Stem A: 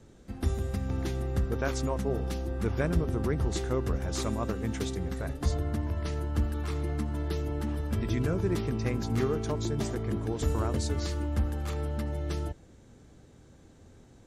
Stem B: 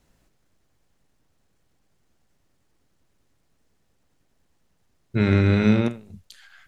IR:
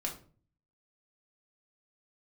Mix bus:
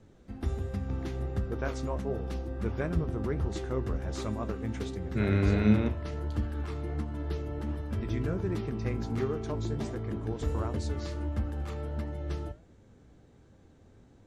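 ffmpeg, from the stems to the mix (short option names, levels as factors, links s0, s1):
-filter_complex "[0:a]volume=1.19[s0];[1:a]volume=0.708[s1];[s0][s1]amix=inputs=2:normalize=0,lowpass=f=3300:p=1,flanger=delay=9.5:depth=9.4:regen=65:speed=1.4:shape=sinusoidal"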